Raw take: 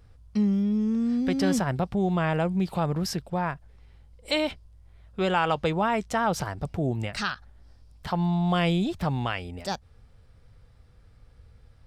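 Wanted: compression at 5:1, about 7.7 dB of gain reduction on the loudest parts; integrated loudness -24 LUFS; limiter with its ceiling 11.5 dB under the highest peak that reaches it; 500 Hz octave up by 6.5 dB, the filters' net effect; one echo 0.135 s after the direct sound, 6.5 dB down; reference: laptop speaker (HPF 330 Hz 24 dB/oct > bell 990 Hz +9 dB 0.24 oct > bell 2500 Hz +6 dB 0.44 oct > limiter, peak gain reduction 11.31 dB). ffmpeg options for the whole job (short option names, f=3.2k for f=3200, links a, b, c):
-af "equalizer=f=500:t=o:g=8.5,acompressor=threshold=-24dB:ratio=5,alimiter=level_in=0.5dB:limit=-24dB:level=0:latency=1,volume=-0.5dB,highpass=f=330:w=0.5412,highpass=f=330:w=1.3066,equalizer=f=990:t=o:w=0.24:g=9,equalizer=f=2.5k:t=o:w=0.44:g=6,aecho=1:1:135:0.473,volume=16dB,alimiter=limit=-14.5dB:level=0:latency=1"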